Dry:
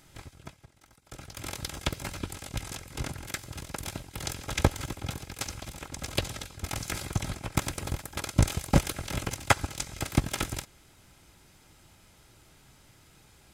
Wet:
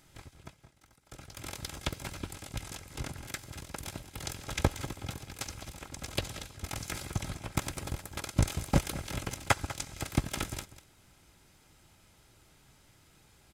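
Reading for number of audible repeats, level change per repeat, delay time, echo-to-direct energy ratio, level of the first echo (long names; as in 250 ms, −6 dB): 1, repeats not evenly spaced, 196 ms, −15.0 dB, −15.0 dB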